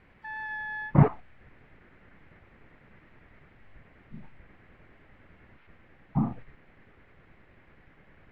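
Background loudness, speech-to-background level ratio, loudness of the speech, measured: -36.5 LUFS, 10.0 dB, -26.5 LUFS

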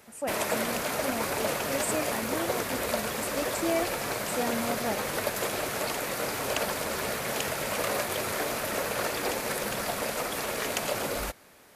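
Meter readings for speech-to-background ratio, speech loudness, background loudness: -5.0 dB, -35.0 LUFS, -30.0 LUFS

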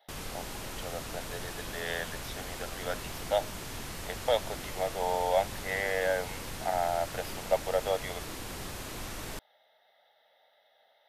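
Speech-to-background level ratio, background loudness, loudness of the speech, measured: 6.5 dB, -40.0 LUFS, -33.5 LUFS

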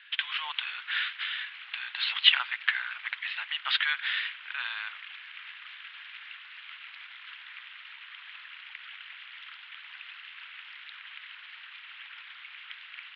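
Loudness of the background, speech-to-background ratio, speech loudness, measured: -44.0 LUFS, 15.0 dB, -29.0 LUFS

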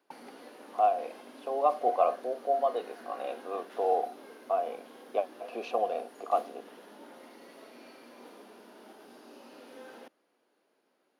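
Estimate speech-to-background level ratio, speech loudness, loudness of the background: 19.0 dB, -31.5 LUFS, -50.5 LUFS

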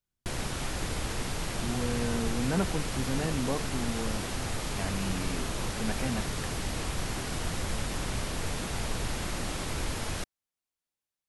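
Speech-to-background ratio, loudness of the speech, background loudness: -0.5 dB, -34.5 LUFS, -34.0 LUFS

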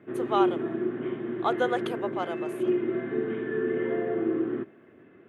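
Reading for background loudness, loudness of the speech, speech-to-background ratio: -29.5 LUFS, -31.0 LUFS, -1.5 dB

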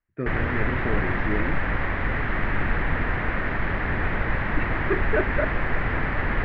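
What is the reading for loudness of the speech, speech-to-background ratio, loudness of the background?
-30.5 LUFS, -4.0 dB, -26.5 LUFS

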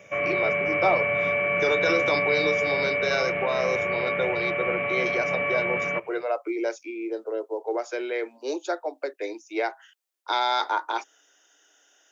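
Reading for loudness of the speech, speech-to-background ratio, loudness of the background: -29.0 LUFS, -4.5 dB, -24.5 LUFS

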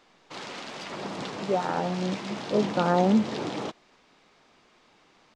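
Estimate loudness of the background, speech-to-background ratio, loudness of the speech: -35.0 LUFS, 8.5 dB, -26.5 LUFS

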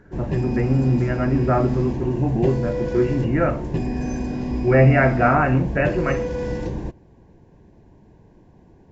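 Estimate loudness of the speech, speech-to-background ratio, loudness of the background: -20.5 LUFS, 6.0 dB, -26.5 LUFS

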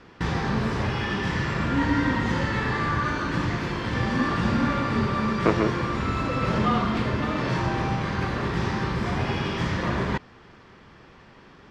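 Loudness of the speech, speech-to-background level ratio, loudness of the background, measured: -27.5 LUFS, -2.0 dB, -25.5 LUFS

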